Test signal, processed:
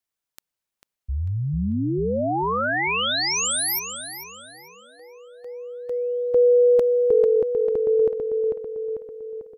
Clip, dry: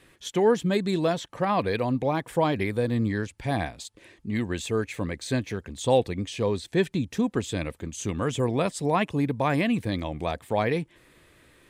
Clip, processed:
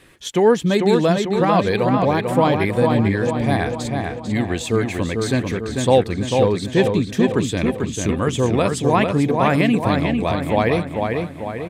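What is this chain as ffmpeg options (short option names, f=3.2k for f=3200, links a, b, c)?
-filter_complex "[0:a]asplit=2[a][b];[b]adelay=445,lowpass=f=3.7k:p=1,volume=-4dB,asplit=2[c][d];[d]adelay=445,lowpass=f=3.7k:p=1,volume=0.53,asplit=2[e][f];[f]adelay=445,lowpass=f=3.7k:p=1,volume=0.53,asplit=2[g][h];[h]adelay=445,lowpass=f=3.7k:p=1,volume=0.53,asplit=2[i][j];[j]adelay=445,lowpass=f=3.7k:p=1,volume=0.53,asplit=2[k][l];[l]adelay=445,lowpass=f=3.7k:p=1,volume=0.53,asplit=2[m][n];[n]adelay=445,lowpass=f=3.7k:p=1,volume=0.53[o];[a][c][e][g][i][k][m][o]amix=inputs=8:normalize=0,volume=6.5dB"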